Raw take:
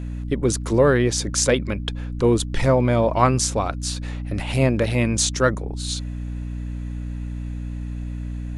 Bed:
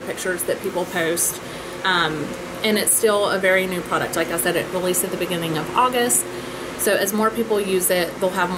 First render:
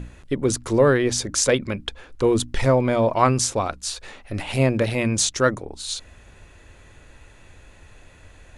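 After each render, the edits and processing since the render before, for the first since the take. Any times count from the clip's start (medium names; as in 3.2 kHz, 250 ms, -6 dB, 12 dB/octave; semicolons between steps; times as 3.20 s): hum notches 60/120/180/240/300 Hz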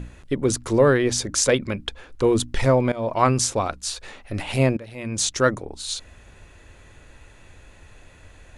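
2.92–3.37 s: fade in equal-power, from -18 dB; 4.77–5.30 s: fade in quadratic, from -19 dB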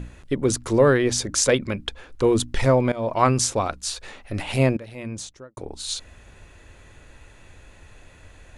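4.84–5.57 s: studio fade out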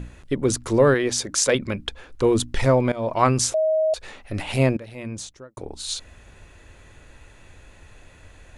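0.94–1.55 s: bass shelf 180 Hz -10 dB; 3.54–3.94 s: bleep 631 Hz -17 dBFS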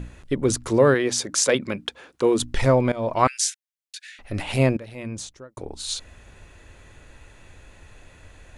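0.69–2.39 s: high-pass 87 Hz -> 220 Hz; 3.27–4.19 s: steep high-pass 1.5 kHz 96 dB/octave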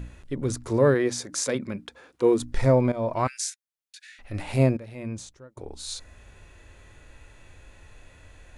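harmonic-percussive split percussive -9 dB; dynamic bell 3 kHz, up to -7 dB, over -54 dBFS, Q 2.9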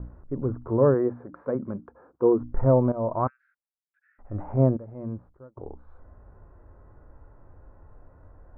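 gate with hold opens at -43 dBFS; steep low-pass 1.3 kHz 36 dB/octave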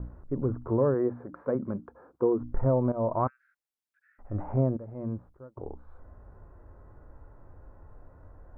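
compression 3:1, threshold -22 dBFS, peak gain reduction 6.5 dB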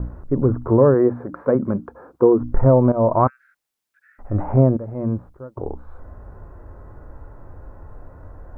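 trim +11 dB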